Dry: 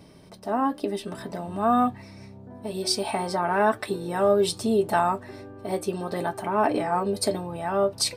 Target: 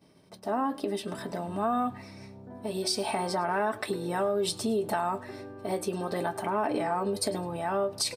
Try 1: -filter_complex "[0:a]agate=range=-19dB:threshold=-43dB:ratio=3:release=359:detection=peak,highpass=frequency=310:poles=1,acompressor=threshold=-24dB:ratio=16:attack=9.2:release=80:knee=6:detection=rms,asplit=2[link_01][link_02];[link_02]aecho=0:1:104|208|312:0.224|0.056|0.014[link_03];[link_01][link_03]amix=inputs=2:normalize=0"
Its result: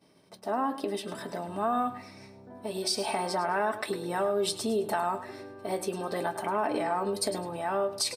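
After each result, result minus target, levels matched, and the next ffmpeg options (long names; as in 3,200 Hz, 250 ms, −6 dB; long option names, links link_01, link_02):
echo-to-direct +8 dB; 125 Hz band −3.5 dB
-filter_complex "[0:a]agate=range=-19dB:threshold=-43dB:ratio=3:release=359:detection=peak,highpass=frequency=310:poles=1,acompressor=threshold=-24dB:ratio=16:attack=9.2:release=80:knee=6:detection=rms,asplit=2[link_01][link_02];[link_02]aecho=0:1:104|208:0.0891|0.0223[link_03];[link_01][link_03]amix=inputs=2:normalize=0"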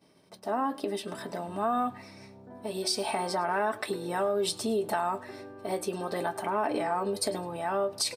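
125 Hz band −3.5 dB
-filter_complex "[0:a]agate=range=-19dB:threshold=-43dB:ratio=3:release=359:detection=peak,highpass=frequency=120:poles=1,acompressor=threshold=-24dB:ratio=16:attack=9.2:release=80:knee=6:detection=rms,asplit=2[link_01][link_02];[link_02]aecho=0:1:104|208:0.0891|0.0223[link_03];[link_01][link_03]amix=inputs=2:normalize=0"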